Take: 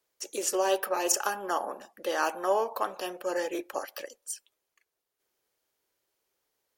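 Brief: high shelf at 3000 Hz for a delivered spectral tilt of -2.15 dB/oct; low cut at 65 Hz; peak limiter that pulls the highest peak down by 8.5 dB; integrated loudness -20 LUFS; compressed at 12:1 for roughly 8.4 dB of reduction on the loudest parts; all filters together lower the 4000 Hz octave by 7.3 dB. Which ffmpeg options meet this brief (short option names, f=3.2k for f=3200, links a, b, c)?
-af "highpass=65,highshelf=f=3k:g=-7,equalizer=f=4k:t=o:g=-4.5,acompressor=threshold=-30dB:ratio=12,volume=18.5dB,alimiter=limit=-7.5dB:level=0:latency=1"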